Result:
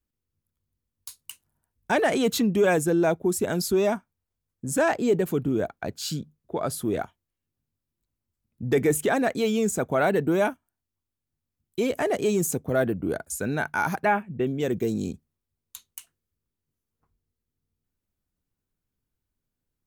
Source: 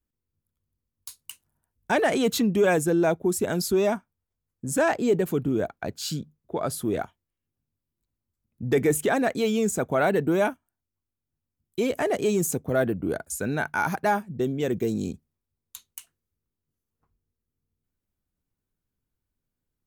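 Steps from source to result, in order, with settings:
0:14.05–0:14.47: high shelf with overshoot 3,500 Hz −11 dB, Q 3

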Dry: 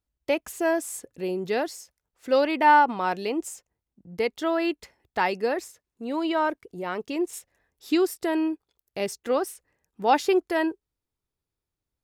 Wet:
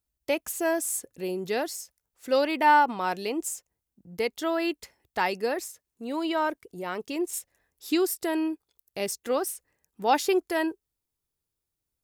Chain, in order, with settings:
high-shelf EQ 6,100 Hz +11.5 dB
level −2.5 dB

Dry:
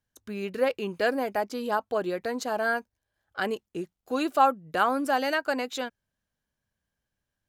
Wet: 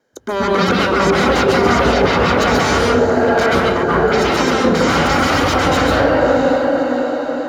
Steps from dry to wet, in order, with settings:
parametric band 450 Hz +7.5 dB 1.2 octaves
brickwall limiter −15.5 dBFS, peak gain reduction 10 dB
feedback delay with all-pass diffusion 611 ms, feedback 48%, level −12 dB
sine wavefolder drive 18 dB, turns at −13.5 dBFS
tape wow and flutter 25 cents
convolution reverb RT60 1.1 s, pre-delay 128 ms, DRR −3 dB
level −12.5 dB

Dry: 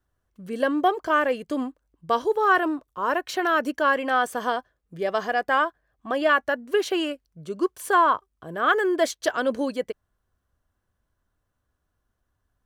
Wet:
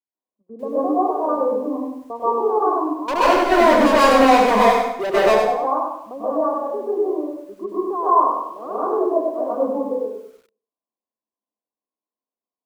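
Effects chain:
Chebyshev band-pass filter 210–1,100 Hz, order 5
noise gate −46 dBFS, range −15 dB
0:03.08–0:05.20: leveller curve on the samples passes 5
dense smooth reverb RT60 0.58 s, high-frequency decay 0.75×, pre-delay 115 ms, DRR −10 dB
feedback echo at a low word length 98 ms, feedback 35%, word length 8 bits, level −5 dB
level −7 dB

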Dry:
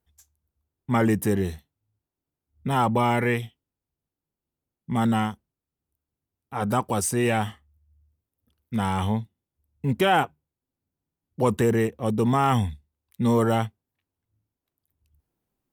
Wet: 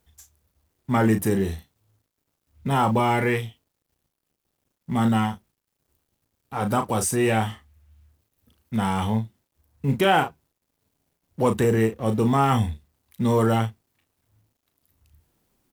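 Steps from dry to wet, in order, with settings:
mu-law and A-law mismatch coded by mu
double-tracking delay 36 ms −8 dB

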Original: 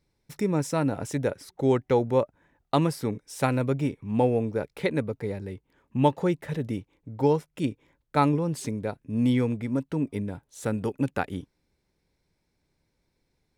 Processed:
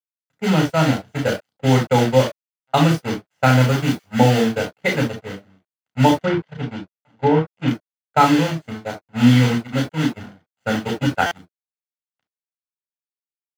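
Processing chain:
0:03.43–0:04.45: spike at every zero crossing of −22.5 dBFS
single-tap delay 1,002 ms −22.5 dB
in parallel at −0.5 dB: downward compressor 16 to 1, threshold −32 dBFS, peak gain reduction 18 dB
on the sum: bit reduction 5 bits
0:06.17–0:07.68: treble cut that deepens with the level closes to 1,700 Hz, closed at −17 dBFS
low-shelf EQ 71 Hz −11 dB
noise gate −24 dBFS, range −31 dB
high-shelf EQ 9,300 Hz −4.5 dB
convolution reverb, pre-delay 3 ms, DRR 1.5 dB
buffer that repeats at 0:11.26, samples 256, times 8
one half of a high-frequency compander decoder only
level −2.5 dB

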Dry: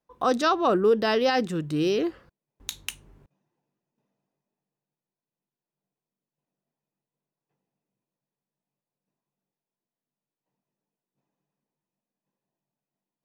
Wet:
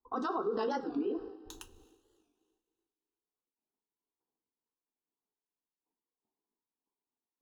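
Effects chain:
adaptive Wiener filter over 15 samples
parametric band 170 Hz −13 dB 0.46 octaves
gate on every frequency bin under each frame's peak −30 dB strong
high-shelf EQ 2,900 Hz −10.5 dB
phaser with its sweep stopped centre 590 Hz, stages 6
coupled-rooms reverb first 0.36 s, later 3.8 s, from −19 dB, DRR 5.5 dB
amplitude tremolo 1.8 Hz, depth 39%
notch filter 360 Hz, Q 12
brickwall limiter −24.5 dBFS, peak gain reduction 9.5 dB
time stretch by overlap-add 0.56×, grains 36 ms
wow of a warped record 45 rpm, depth 160 cents

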